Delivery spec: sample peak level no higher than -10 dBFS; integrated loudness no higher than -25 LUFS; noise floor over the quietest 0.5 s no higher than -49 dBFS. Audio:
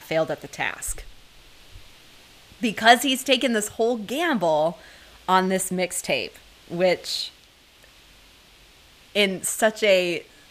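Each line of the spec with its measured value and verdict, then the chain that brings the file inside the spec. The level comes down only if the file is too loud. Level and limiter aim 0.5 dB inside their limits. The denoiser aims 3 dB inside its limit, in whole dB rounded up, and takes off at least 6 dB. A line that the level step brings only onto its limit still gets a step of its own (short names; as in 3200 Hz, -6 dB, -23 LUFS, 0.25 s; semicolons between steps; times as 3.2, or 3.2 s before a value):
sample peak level -2.0 dBFS: fail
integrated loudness -22.5 LUFS: fail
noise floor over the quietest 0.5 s -53 dBFS: OK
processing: gain -3 dB; limiter -10.5 dBFS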